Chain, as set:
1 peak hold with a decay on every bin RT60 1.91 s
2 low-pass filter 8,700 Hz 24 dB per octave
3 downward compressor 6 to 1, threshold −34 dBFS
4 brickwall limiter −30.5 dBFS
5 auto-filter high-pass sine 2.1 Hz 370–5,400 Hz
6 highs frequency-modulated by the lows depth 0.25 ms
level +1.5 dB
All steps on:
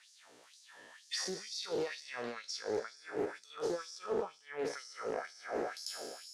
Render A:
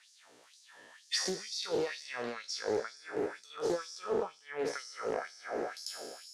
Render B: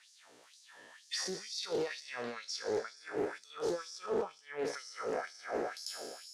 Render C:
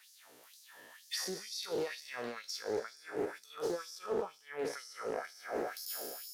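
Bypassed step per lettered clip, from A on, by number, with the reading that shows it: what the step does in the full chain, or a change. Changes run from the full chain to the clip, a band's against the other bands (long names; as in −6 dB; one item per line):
4, average gain reduction 2.0 dB
3, average gain reduction 12.5 dB
2, change in momentary loudness spread +7 LU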